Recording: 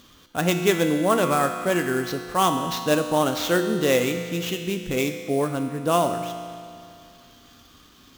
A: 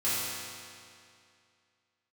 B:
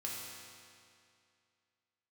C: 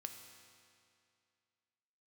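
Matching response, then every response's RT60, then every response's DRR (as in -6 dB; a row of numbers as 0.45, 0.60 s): C; 2.4, 2.4, 2.4 s; -12.5, -4.5, 5.0 dB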